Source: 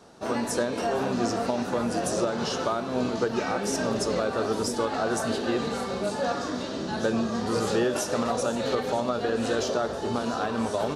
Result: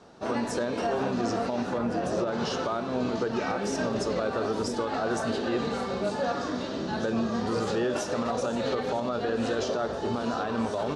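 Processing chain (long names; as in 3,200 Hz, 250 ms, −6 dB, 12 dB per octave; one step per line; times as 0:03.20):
0:01.77–0:02.32: high-shelf EQ 3,600 Hz → 6,900 Hz −11.5 dB
brickwall limiter −18.5 dBFS, peak gain reduction 6 dB
high-frequency loss of the air 71 metres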